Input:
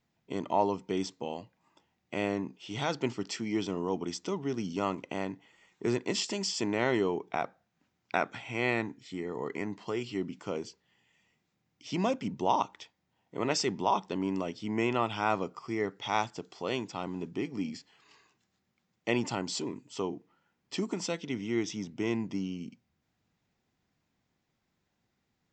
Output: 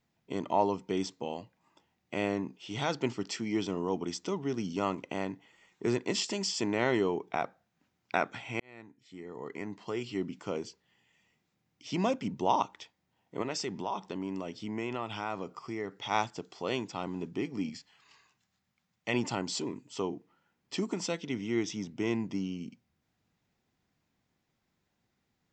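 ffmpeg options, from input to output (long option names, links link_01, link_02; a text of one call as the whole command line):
ffmpeg -i in.wav -filter_complex "[0:a]asettb=1/sr,asplit=3[link_01][link_02][link_03];[link_01]atrim=end=13.424[link_04];[link_02]atrim=start=13.42:end=16.11,asetpts=PTS-STARTPTS,afade=type=in:duration=0.004:curve=qsin,afade=type=out:start_time=2.686:duration=0.004:curve=qsin,acompressor=threshold=-35dB:ratio=2:attack=3.2:release=140:knee=1:detection=peak[link_05];[link_03]atrim=start=16.106[link_06];[link_04][link_05]acrossfade=duration=0.004:curve1=hsin:curve2=qsin[link_07];[link_07][link_06]acrossfade=duration=0.004:curve1=qsin:curve2=hsin,asettb=1/sr,asplit=3[link_08][link_09][link_10];[link_08]atrim=end=17.694[link_11];[link_09]atrim=start=17.69:end=19.14,asetpts=PTS-STARTPTS,afade=type=in:duration=0.004:curve=qsin,afade=type=out:start_time=1.446:duration=0.004:curve=qsin,equalizer=frequency=360:width=1.2:gain=-9[link_12];[link_10]atrim=start=19.136[link_13];[link_11][link_12]acrossfade=duration=0.004:curve1=hsin:curve2=qsin[link_14];[link_14][link_13]acrossfade=duration=0.004:curve1=qsin:curve2=hsin,asplit=2[link_15][link_16];[link_15]atrim=end=8.6,asetpts=PTS-STARTPTS,afade=type=out:start_time=8.596:duration=0.004:curve=hsin[link_17];[link_16]atrim=start=8.6,asetpts=PTS-STARTPTS,afade=type=in:duration=1.61[link_18];[link_17][link_18]concat=n=2:v=0:a=1" out.wav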